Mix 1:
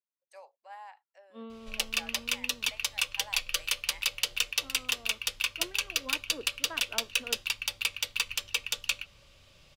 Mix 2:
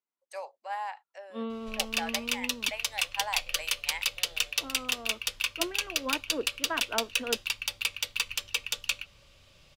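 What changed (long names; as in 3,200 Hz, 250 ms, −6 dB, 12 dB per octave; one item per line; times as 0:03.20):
first voice +11.5 dB
second voice +9.0 dB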